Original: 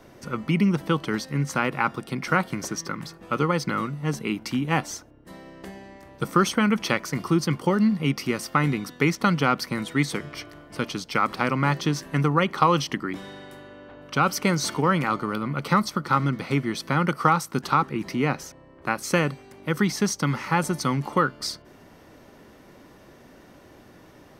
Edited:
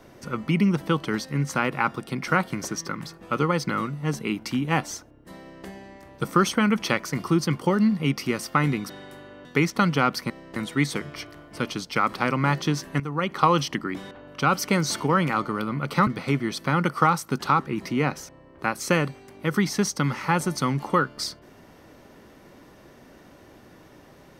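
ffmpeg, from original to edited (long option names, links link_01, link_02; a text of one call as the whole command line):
ffmpeg -i in.wav -filter_complex "[0:a]asplit=8[link_01][link_02][link_03][link_04][link_05][link_06][link_07][link_08];[link_01]atrim=end=8.902[link_09];[link_02]atrim=start=13.298:end=13.852[link_10];[link_03]atrim=start=8.898:end=9.752[link_11];[link_04]atrim=start=5.398:end=5.662[link_12];[link_05]atrim=start=9.748:end=12.19,asetpts=PTS-STARTPTS,afade=type=out:start_time=2.438:duration=0.004:curve=hsin:silence=0.177828[link_13];[link_06]atrim=start=12.19:end=13.302,asetpts=PTS-STARTPTS,afade=type=in:duration=0.43:silence=0.177828[link_14];[link_07]atrim=start=13.848:end=15.812[link_15];[link_08]atrim=start=16.298[link_16];[link_09][link_10]acrossfade=duration=0.004:curve1=hsin:curve2=hsin[link_17];[link_17][link_11]acrossfade=duration=0.004:curve1=hsin:curve2=hsin[link_18];[link_18][link_12]acrossfade=duration=0.004:curve1=hsin:curve2=hsin[link_19];[link_13][link_14]concat=n=2:v=0:a=1[link_20];[link_19][link_20]acrossfade=duration=0.004:curve1=hsin:curve2=hsin[link_21];[link_21][link_15]acrossfade=duration=0.004:curve1=hsin:curve2=hsin[link_22];[link_22][link_16]acrossfade=duration=0.004:curve1=hsin:curve2=hsin" out.wav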